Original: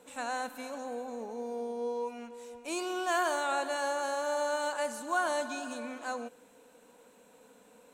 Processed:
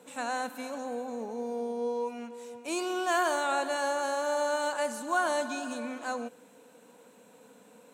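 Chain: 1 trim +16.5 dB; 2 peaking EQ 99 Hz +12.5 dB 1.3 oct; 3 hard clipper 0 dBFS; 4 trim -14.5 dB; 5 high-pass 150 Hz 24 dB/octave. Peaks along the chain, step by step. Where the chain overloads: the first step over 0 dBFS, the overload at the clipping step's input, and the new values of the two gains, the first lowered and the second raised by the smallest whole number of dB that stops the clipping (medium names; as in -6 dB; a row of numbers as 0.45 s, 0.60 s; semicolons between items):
-2.0 dBFS, -2.0 dBFS, -2.0 dBFS, -16.5 dBFS, -16.0 dBFS; nothing clips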